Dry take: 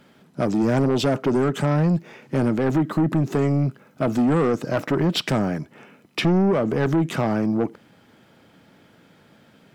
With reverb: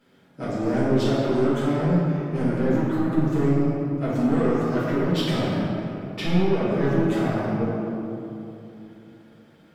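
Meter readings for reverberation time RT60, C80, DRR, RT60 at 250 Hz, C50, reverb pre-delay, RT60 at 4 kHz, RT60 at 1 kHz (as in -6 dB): 2.9 s, -1.0 dB, -11.0 dB, 3.4 s, -3.0 dB, 4 ms, 1.5 s, 2.7 s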